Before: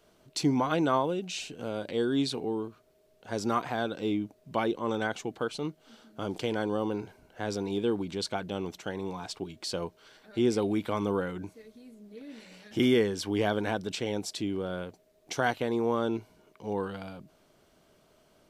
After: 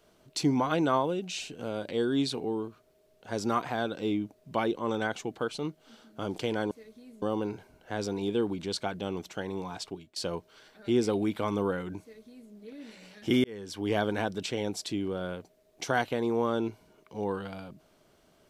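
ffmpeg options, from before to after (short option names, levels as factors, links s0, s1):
-filter_complex "[0:a]asplit=5[s0][s1][s2][s3][s4];[s0]atrim=end=6.712[s5];[s1]atrim=start=11.498:end=12.012[s6];[s2]atrim=start=6.708:end=9.65,asetpts=PTS-STARTPTS,afade=t=out:st=2.622:d=0.32:silence=0.0944061[s7];[s3]atrim=start=9.65:end=12.93,asetpts=PTS-STARTPTS,afade=t=in:d=0.004:c=hsin:silence=0.0944061,afade=t=out:st=3.276:d=0.004:c=hsin[s8];[s4]atrim=start=12.93,asetpts=PTS-STARTPTS,afade=t=in:d=0.53[s9];[s5][s6]acrossfade=d=0.004:c1=hsin:c2=hsin[s10];[s7][s8][s9]concat=n=3:v=0:a=1[s11];[s10][s11]acrossfade=d=0.004:c1=hsin:c2=hsin"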